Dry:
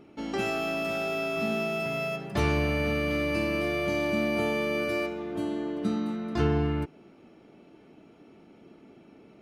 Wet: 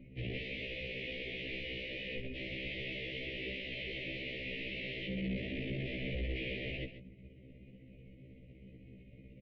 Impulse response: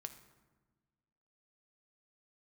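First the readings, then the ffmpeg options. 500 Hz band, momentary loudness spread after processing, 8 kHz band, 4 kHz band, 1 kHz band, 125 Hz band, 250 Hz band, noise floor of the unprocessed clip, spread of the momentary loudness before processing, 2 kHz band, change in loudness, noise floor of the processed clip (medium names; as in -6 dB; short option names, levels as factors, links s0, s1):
-15.5 dB, 18 LU, under -25 dB, -3.0 dB, -32.0 dB, -10.0 dB, -14.0 dB, -55 dBFS, 5 LU, -8.0 dB, -11.0 dB, -57 dBFS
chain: -filter_complex "[0:a]tremolo=f=16:d=0.45,afreqshift=21,aresample=16000,acrusher=bits=4:mode=log:mix=0:aa=0.000001,aresample=44100,aeval=exprs='(mod(35.5*val(0)+1,2)-1)/35.5':c=same,asuperstop=centerf=1300:order=12:qfactor=0.9,asplit=2[s0][s1];[s1]aecho=0:1:137:0.251[s2];[s0][s2]amix=inputs=2:normalize=0,highpass=f=160:t=q:w=0.5412,highpass=f=160:t=q:w=1.307,lowpass=f=3100:t=q:w=0.5176,lowpass=f=3100:t=q:w=0.7071,lowpass=f=3100:t=q:w=1.932,afreqshift=-180,afftfilt=real='re*1.73*eq(mod(b,3),0)':imag='im*1.73*eq(mod(b,3),0)':win_size=2048:overlap=0.75,volume=1.5"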